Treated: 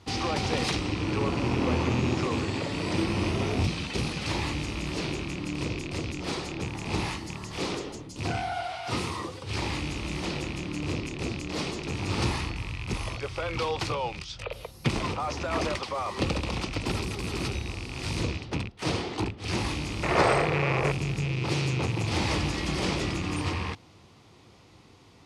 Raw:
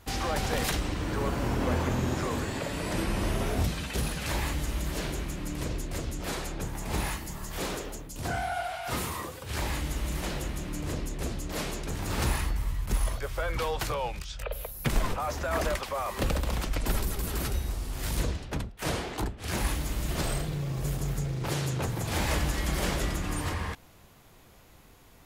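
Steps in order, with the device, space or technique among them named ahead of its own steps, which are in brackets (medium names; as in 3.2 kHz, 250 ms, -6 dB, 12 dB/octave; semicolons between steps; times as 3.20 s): car door speaker with a rattle (rattle on loud lows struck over -33 dBFS, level -27 dBFS; cabinet simulation 93–7900 Hz, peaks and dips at 100 Hz +6 dB, 330 Hz +4 dB, 620 Hz -5 dB, 1.6 kHz -8 dB, 4.7 kHz +3 dB, 7.2 kHz -7 dB); 20.03–20.92 s: high-order bell 940 Hz +14.5 dB 2.7 oct; trim +2.5 dB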